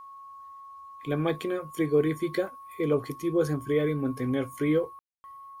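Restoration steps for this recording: band-stop 1.1 kHz, Q 30; room tone fill 4.99–5.24 s

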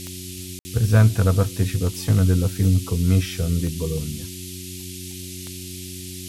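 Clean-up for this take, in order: de-click; de-hum 91.5 Hz, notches 4; room tone fill 0.59–0.65 s; noise print and reduce 30 dB

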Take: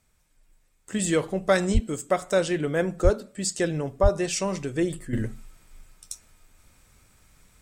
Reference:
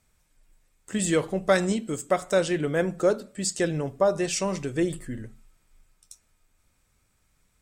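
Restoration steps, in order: 1.73–1.85 s: high-pass 140 Hz 24 dB/octave; 3.03–3.15 s: high-pass 140 Hz 24 dB/octave; 4.02–4.14 s: high-pass 140 Hz 24 dB/octave; 5.13 s: gain correction -10.5 dB

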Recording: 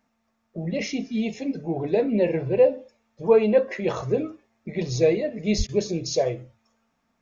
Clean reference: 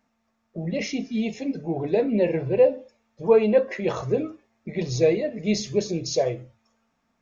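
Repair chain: de-plosive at 5.57 s; interpolate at 5.67 s, 16 ms

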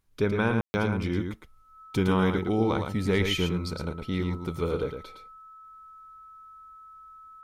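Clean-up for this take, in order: band-stop 1.3 kHz, Q 30; room tone fill 0.61–0.74 s; inverse comb 111 ms -6 dB

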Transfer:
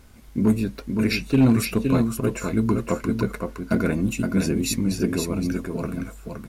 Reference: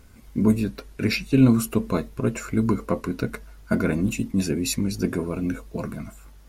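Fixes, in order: clip repair -10.5 dBFS; expander -33 dBFS, range -21 dB; inverse comb 517 ms -5 dB

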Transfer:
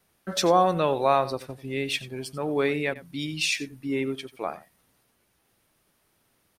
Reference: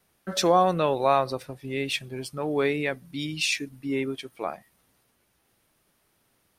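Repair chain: interpolate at 2.94 s, 13 ms; inverse comb 90 ms -16.5 dB

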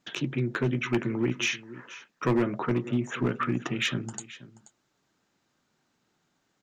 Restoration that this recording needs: clip repair -18.5 dBFS; inverse comb 481 ms -17.5 dB

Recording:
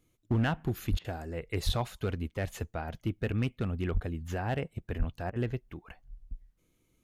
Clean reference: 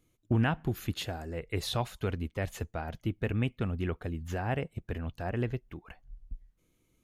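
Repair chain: clip repair -21 dBFS; de-plosive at 0.90/1.65/3.93/4.98 s; interpolate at 0.99/5.30 s, 55 ms

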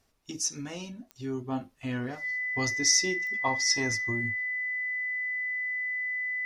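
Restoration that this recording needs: de-click; band-stop 2 kHz, Q 30

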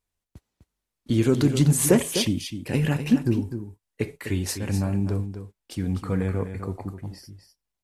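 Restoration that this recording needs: inverse comb 252 ms -9.5 dB

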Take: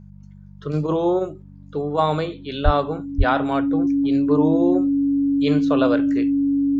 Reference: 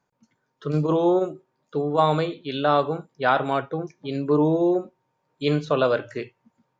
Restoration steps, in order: de-hum 48.7 Hz, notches 4; band-stop 280 Hz, Q 30; de-plosive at 2.64/3.17 s

